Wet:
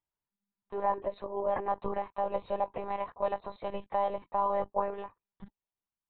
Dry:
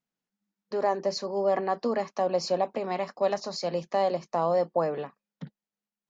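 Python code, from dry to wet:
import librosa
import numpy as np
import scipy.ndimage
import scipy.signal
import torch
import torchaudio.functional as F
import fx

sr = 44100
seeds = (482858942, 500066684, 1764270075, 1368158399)

y = fx.peak_eq(x, sr, hz=960.0, db=11.0, octaves=0.48)
y = fx.lpc_monotone(y, sr, seeds[0], pitch_hz=200.0, order=16)
y = y * librosa.db_to_amplitude(-7.5)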